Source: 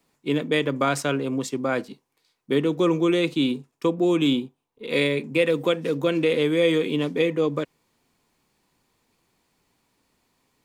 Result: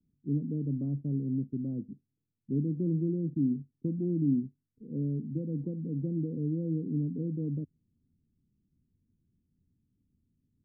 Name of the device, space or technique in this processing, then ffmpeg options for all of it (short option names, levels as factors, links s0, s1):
the neighbour's flat through the wall: -af "lowpass=f=240:w=0.5412,lowpass=f=240:w=1.3066,equalizer=f=87:t=o:w=0.55:g=7"